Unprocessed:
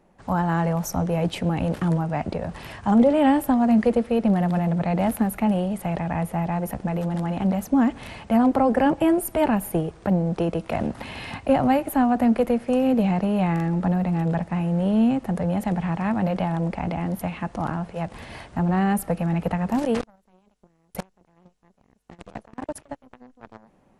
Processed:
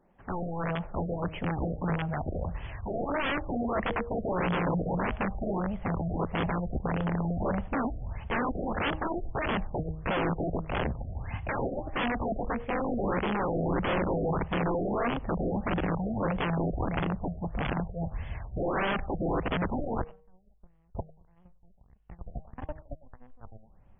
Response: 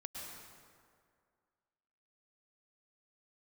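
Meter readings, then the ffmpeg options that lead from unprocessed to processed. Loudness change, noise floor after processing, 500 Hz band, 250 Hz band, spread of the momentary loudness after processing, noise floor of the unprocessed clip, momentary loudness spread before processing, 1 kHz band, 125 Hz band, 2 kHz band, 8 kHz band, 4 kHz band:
−8.5 dB, −59 dBFS, −6.5 dB, −11.0 dB, 9 LU, −62 dBFS, 14 LU, −6.0 dB, −7.0 dB, −0.5 dB, below −40 dB, −2.0 dB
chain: -filter_complex "[0:a]bandreject=frequency=157.2:width_type=h:width=4,bandreject=frequency=314.4:width_type=h:width=4,bandreject=frequency=471.6:width_type=h:width=4,bandreject=frequency=628.8:width_type=h:width=4,bandreject=frequency=786:width_type=h:width=4,bandreject=frequency=943.2:width_type=h:width=4,bandreject=frequency=1100.4:width_type=h:width=4,asubboost=boost=10.5:cutoff=83,aeval=exprs='(mod(7.08*val(0)+1,2)-1)/7.08':channel_layout=same[link_01];[1:a]atrim=start_sample=2205,afade=type=out:start_time=0.39:duration=0.01,atrim=end_sample=17640,atrim=end_sample=4410[link_02];[link_01][link_02]afir=irnorm=-1:irlink=0,afftfilt=real='re*lt(b*sr/1024,730*pow(3500/730,0.5+0.5*sin(2*PI*1.6*pts/sr)))':imag='im*lt(b*sr/1024,730*pow(3500/730,0.5+0.5*sin(2*PI*1.6*pts/sr)))':win_size=1024:overlap=0.75"

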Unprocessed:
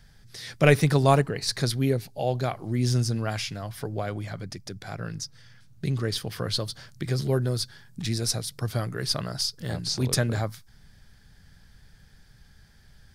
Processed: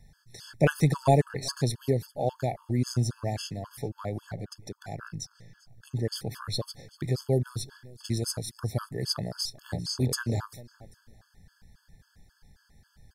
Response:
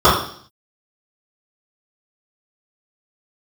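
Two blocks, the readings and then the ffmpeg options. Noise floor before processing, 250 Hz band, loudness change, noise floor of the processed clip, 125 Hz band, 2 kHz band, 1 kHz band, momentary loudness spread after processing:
−55 dBFS, −3.0 dB, −3.5 dB, −68 dBFS, −3.0 dB, −6.5 dB, −3.0 dB, 16 LU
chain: -af "equalizer=frequency=2800:width=1.2:gain=-7,aecho=1:1:394|788:0.0841|0.0236,afftfilt=real='re*gt(sin(2*PI*3.7*pts/sr)*(1-2*mod(floor(b*sr/1024/870),2)),0)':imag='im*gt(sin(2*PI*3.7*pts/sr)*(1-2*mod(floor(b*sr/1024/870),2)),0)':win_size=1024:overlap=0.75"

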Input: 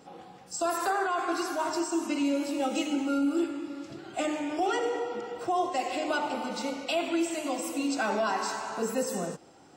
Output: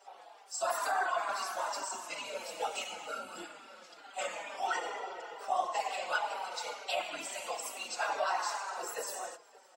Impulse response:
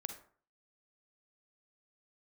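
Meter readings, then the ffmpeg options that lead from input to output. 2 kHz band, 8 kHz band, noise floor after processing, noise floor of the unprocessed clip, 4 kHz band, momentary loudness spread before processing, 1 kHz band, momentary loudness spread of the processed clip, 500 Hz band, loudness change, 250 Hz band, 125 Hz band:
−2.0 dB, −2.5 dB, −58 dBFS, −53 dBFS, −3.0 dB, 7 LU, −3.0 dB, 13 LU, −8.5 dB, −6.0 dB, −27.0 dB, below −20 dB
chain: -filter_complex "[0:a]highpass=frequency=640:width=0.5412,highpass=frequency=640:width=1.3066,afftfilt=real='hypot(re,im)*cos(2*PI*random(0))':imag='hypot(re,im)*sin(2*PI*random(1))':win_size=512:overlap=0.75,asplit=2[link_01][link_02];[link_02]adelay=565.6,volume=-20dB,highshelf=frequency=4000:gain=-12.7[link_03];[link_01][link_03]amix=inputs=2:normalize=0,asplit=2[link_04][link_05];[link_05]adelay=4.6,afreqshift=-2.2[link_06];[link_04][link_06]amix=inputs=2:normalize=1,volume=6.5dB"

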